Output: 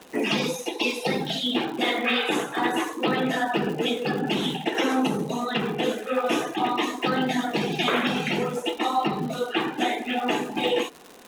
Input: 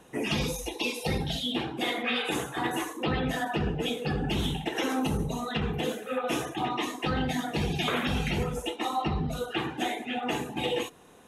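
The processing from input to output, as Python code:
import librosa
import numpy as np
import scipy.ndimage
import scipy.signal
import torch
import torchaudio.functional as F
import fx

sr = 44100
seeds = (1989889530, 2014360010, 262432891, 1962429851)

y = scipy.signal.sosfilt(scipy.signal.butter(4, 190.0, 'highpass', fs=sr, output='sos'), x)
y = fx.high_shelf(y, sr, hz=8600.0, db=-11.0)
y = fx.dmg_crackle(y, sr, seeds[0], per_s=200.0, level_db=-39.0)
y = y * 10.0 ** (6.0 / 20.0)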